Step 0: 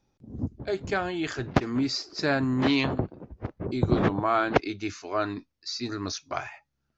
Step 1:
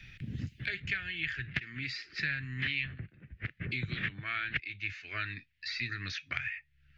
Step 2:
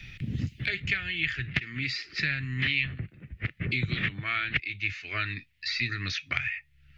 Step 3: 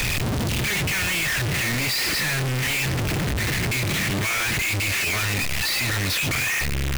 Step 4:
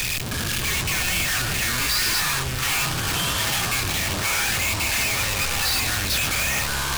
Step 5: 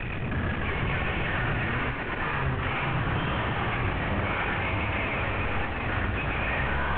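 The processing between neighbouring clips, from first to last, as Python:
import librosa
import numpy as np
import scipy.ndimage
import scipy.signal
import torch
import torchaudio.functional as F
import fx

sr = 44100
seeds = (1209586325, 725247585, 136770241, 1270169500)

y1 = fx.curve_eq(x, sr, hz=(140.0, 260.0, 950.0, 1800.0, 2700.0, 6000.0), db=(0, -15, -26, 13, 12, -11))
y1 = fx.band_squash(y1, sr, depth_pct=100)
y1 = y1 * 10.0 ** (-9.0 / 20.0)
y2 = fx.peak_eq(y1, sr, hz=1600.0, db=-7.0, octaves=0.27)
y2 = y2 * 10.0 ** (7.0 / 20.0)
y3 = np.sign(y2) * np.sqrt(np.mean(np.square(y2)))
y3 = y3 * 10.0 ** (8.5 / 20.0)
y4 = fx.echo_pitch(y3, sr, ms=313, semitones=-7, count=3, db_per_echo=-3.0)
y4 = fx.high_shelf(y4, sr, hz=2100.0, db=9.5)
y4 = fx.notch(y4, sr, hz=2000.0, q=19.0)
y4 = y4 * 10.0 ** (-6.5 / 20.0)
y5 = fx.cvsd(y4, sr, bps=16000)
y5 = y5 + 10.0 ** (-4.0 / 20.0) * np.pad(y5, (int(120 * sr / 1000.0), 0))[:len(y5)]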